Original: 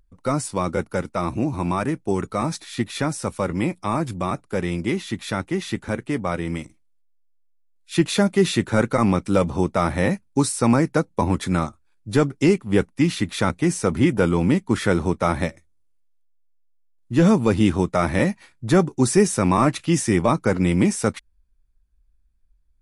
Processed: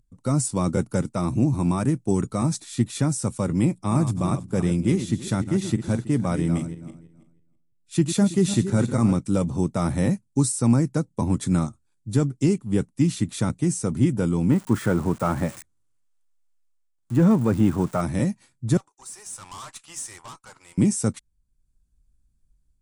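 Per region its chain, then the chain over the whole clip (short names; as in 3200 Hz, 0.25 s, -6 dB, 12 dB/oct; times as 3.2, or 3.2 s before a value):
3.65–9.18 regenerating reverse delay 0.163 s, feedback 40%, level -10 dB + mismatched tape noise reduction decoder only
14.5–18.01 switching spikes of -18 dBFS + de-esser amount 70% + bell 1400 Hz +12.5 dB 2.5 oct
18.77–20.78 ladder high-pass 810 Hz, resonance 40% + tube stage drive 34 dB, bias 0.5
whole clip: graphic EQ 125/250/2000/8000 Hz +12/+6/-4/+12 dB; AGC gain up to 5 dB; gain -7.5 dB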